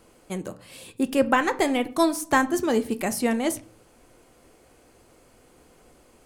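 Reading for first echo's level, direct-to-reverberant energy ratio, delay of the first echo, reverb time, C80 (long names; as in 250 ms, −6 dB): no echo audible, 9.5 dB, no echo audible, 0.40 s, 23.0 dB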